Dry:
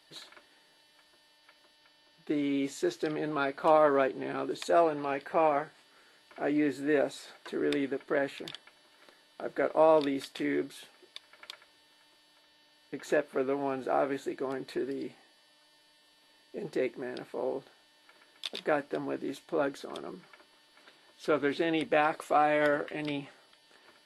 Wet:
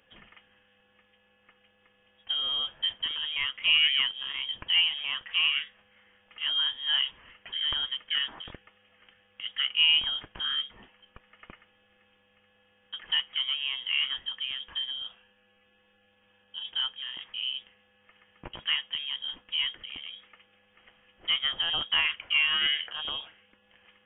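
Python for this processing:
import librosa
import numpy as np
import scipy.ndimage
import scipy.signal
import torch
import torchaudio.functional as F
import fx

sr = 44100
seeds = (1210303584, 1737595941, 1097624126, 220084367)

y = fx.freq_invert(x, sr, carrier_hz=3500)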